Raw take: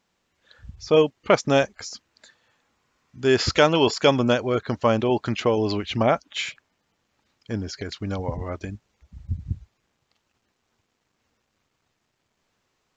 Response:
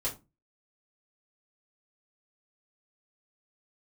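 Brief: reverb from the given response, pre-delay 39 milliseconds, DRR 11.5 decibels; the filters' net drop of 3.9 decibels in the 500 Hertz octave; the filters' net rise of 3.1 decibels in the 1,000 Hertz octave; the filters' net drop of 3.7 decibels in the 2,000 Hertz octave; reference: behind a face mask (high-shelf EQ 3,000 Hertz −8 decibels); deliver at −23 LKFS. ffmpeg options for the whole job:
-filter_complex "[0:a]equalizer=frequency=500:width_type=o:gain=-6.5,equalizer=frequency=1000:width_type=o:gain=8.5,equalizer=frequency=2000:width_type=o:gain=-5.5,asplit=2[link_01][link_02];[1:a]atrim=start_sample=2205,adelay=39[link_03];[link_02][link_03]afir=irnorm=-1:irlink=0,volume=-16dB[link_04];[link_01][link_04]amix=inputs=2:normalize=0,highshelf=frequency=3000:gain=-8,volume=1.5dB"

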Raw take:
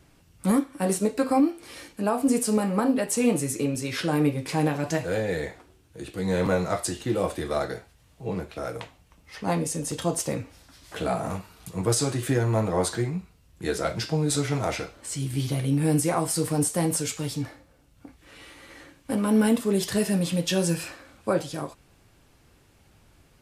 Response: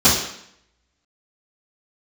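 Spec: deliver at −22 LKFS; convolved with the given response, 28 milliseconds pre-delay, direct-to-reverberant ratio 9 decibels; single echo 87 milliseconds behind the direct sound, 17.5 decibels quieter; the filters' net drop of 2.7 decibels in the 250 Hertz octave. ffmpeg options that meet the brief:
-filter_complex "[0:a]equalizer=frequency=250:width_type=o:gain=-3.5,aecho=1:1:87:0.133,asplit=2[link_01][link_02];[1:a]atrim=start_sample=2205,adelay=28[link_03];[link_02][link_03]afir=irnorm=-1:irlink=0,volume=-31.5dB[link_04];[link_01][link_04]amix=inputs=2:normalize=0,volume=4dB"

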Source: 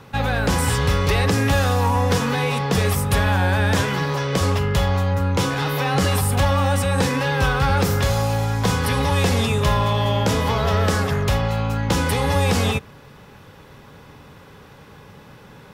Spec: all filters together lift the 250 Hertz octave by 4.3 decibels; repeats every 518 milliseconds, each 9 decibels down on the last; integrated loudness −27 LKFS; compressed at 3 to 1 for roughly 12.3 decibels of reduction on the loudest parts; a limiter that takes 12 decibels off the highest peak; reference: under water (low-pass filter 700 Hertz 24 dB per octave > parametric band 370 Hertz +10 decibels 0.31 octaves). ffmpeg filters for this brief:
ffmpeg -i in.wav -af "equalizer=frequency=250:width_type=o:gain=4.5,acompressor=threshold=-31dB:ratio=3,alimiter=level_in=6dB:limit=-24dB:level=0:latency=1,volume=-6dB,lowpass=frequency=700:width=0.5412,lowpass=frequency=700:width=1.3066,equalizer=frequency=370:width_type=o:width=0.31:gain=10,aecho=1:1:518|1036|1554|2072:0.355|0.124|0.0435|0.0152,volume=11.5dB" out.wav

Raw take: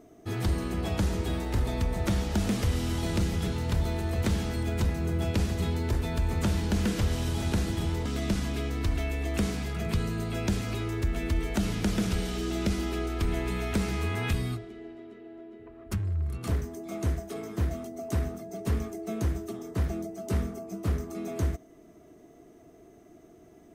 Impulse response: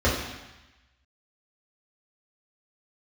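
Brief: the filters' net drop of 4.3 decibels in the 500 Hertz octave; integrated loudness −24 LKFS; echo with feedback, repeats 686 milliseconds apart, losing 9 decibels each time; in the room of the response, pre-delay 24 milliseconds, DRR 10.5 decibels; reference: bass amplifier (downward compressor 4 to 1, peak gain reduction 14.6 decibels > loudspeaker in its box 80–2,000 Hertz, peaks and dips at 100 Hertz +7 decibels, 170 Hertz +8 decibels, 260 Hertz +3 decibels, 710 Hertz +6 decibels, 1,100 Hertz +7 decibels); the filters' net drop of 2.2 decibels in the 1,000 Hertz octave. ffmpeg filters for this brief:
-filter_complex "[0:a]equalizer=frequency=500:width_type=o:gain=-8,equalizer=frequency=1000:width_type=o:gain=-6,aecho=1:1:686|1372|2058|2744:0.355|0.124|0.0435|0.0152,asplit=2[link_01][link_02];[1:a]atrim=start_sample=2205,adelay=24[link_03];[link_02][link_03]afir=irnorm=-1:irlink=0,volume=-27dB[link_04];[link_01][link_04]amix=inputs=2:normalize=0,acompressor=threshold=-33dB:ratio=4,highpass=frequency=80:width=0.5412,highpass=frequency=80:width=1.3066,equalizer=frequency=100:width_type=q:width=4:gain=7,equalizer=frequency=170:width_type=q:width=4:gain=8,equalizer=frequency=260:width_type=q:width=4:gain=3,equalizer=frequency=710:width_type=q:width=4:gain=6,equalizer=frequency=1100:width_type=q:width=4:gain=7,lowpass=frequency=2000:width=0.5412,lowpass=frequency=2000:width=1.3066,volume=12dB"

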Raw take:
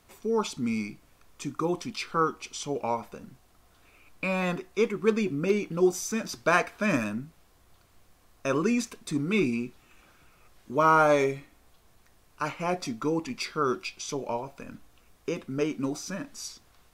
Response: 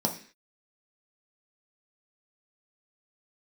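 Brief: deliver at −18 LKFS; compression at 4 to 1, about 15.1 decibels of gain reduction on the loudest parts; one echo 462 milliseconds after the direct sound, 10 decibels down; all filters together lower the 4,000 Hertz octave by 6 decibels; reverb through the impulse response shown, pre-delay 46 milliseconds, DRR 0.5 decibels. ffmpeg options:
-filter_complex "[0:a]equalizer=frequency=4000:width_type=o:gain=-8,acompressor=threshold=-36dB:ratio=4,aecho=1:1:462:0.316,asplit=2[link_01][link_02];[1:a]atrim=start_sample=2205,adelay=46[link_03];[link_02][link_03]afir=irnorm=-1:irlink=0,volume=-8.5dB[link_04];[link_01][link_04]amix=inputs=2:normalize=0,volume=14.5dB"

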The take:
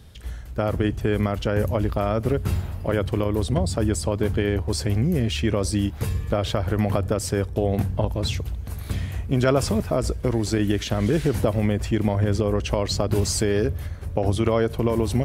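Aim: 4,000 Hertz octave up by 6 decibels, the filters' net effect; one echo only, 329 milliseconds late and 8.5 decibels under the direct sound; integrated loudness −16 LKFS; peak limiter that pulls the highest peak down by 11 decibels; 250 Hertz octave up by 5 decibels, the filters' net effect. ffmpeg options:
ffmpeg -i in.wav -af "equalizer=frequency=250:width_type=o:gain=6.5,equalizer=frequency=4000:width_type=o:gain=7.5,alimiter=limit=-15dB:level=0:latency=1,aecho=1:1:329:0.376,volume=9dB" out.wav

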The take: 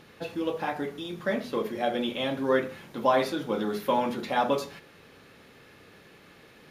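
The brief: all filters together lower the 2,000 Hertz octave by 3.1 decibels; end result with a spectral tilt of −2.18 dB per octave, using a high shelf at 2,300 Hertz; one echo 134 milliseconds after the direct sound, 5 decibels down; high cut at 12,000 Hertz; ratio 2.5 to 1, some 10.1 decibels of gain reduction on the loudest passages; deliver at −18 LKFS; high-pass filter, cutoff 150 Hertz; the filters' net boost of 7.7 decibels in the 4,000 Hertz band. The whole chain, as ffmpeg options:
ffmpeg -i in.wav -af "highpass=150,lowpass=12000,equalizer=frequency=2000:width_type=o:gain=-9,highshelf=frequency=2300:gain=6,equalizer=frequency=4000:width_type=o:gain=7.5,acompressor=threshold=-34dB:ratio=2.5,aecho=1:1:134:0.562,volume=16.5dB" out.wav

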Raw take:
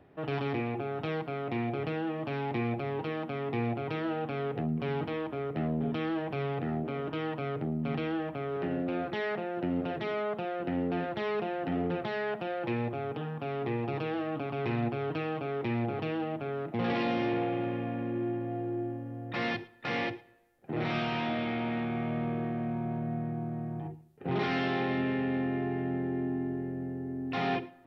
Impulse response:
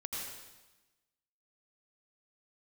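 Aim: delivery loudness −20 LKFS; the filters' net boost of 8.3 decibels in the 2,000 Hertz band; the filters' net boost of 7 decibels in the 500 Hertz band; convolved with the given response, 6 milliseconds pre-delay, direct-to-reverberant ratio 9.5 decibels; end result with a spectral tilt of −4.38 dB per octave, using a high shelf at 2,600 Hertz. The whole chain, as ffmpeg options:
-filter_complex "[0:a]equalizer=frequency=500:width_type=o:gain=8.5,equalizer=frequency=2000:width_type=o:gain=6,highshelf=frequency=2600:gain=8,asplit=2[link_01][link_02];[1:a]atrim=start_sample=2205,adelay=6[link_03];[link_02][link_03]afir=irnorm=-1:irlink=0,volume=-11dB[link_04];[link_01][link_04]amix=inputs=2:normalize=0,volume=8dB"

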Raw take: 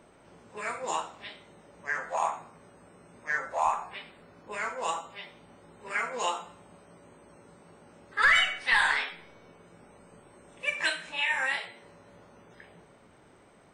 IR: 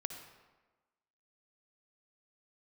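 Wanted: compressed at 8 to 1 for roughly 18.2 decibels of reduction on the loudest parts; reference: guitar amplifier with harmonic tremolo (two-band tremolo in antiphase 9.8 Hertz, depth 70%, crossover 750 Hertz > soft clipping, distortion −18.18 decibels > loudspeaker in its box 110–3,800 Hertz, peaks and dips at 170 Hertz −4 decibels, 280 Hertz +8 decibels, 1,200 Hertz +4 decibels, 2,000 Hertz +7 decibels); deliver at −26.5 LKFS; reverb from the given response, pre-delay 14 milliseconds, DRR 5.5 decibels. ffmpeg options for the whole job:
-filter_complex "[0:a]acompressor=threshold=-37dB:ratio=8,asplit=2[link_01][link_02];[1:a]atrim=start_sample=2205,adelay=14[link_03];[link_02][link_03]afir=irnorm=-1:irlink=0,volume=-4.5dB[link_04];[link_01][link_04]amix=inputs=2:normalize=0,acrossover=split=750[link_05][link_06];[link_05]aeval=exprs='val(0)*(1-0.7/2+0.7/2*cos(2*PI*9.8*n/s))':channel_layout=same[link_07];[link_06]aeval=exprs='val(0)*(1-0.7/2-0.7/2*cos(2*PI*9.8*n/s))':channel_layout=same[link_08];[link_07][link_08]amix=inputs=2:normalize=0,asoftclip=threshold=-32.5dB,highpass=110,equalizer=frequency=170:width_type=q:width=4:gain=-4,equalizer=frequency=280:width_type=q:width=4:gain=8,equalizer=frequency=1200:width_type=q:width=4:gain=4,equalizer=frequency=2000:width_type=q:width=4:gain=7,lowpass=frequency=3800:width=0.5412,lowpass=frequency=3800:width=1.3066,volume=15.5dB"

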